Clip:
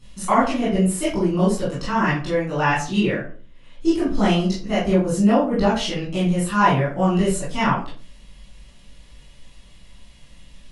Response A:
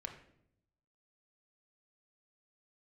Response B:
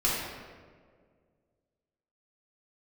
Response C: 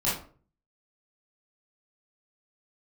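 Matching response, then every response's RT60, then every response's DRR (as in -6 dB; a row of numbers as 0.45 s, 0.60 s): C; 0.70 s, 1.8 s, 0.45 s; 3.0 dB, -7.5 dB, -10.0 dB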